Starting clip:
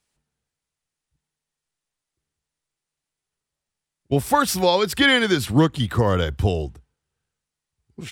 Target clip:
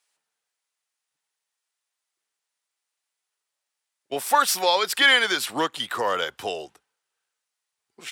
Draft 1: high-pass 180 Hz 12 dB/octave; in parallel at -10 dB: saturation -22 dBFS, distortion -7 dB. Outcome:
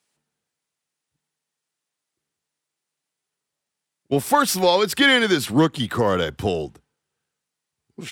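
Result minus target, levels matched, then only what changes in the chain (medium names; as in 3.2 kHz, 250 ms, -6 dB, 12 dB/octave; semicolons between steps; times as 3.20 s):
250 Hz band +12.0 dB
change: high-pass 700 Hz 12 dB/octave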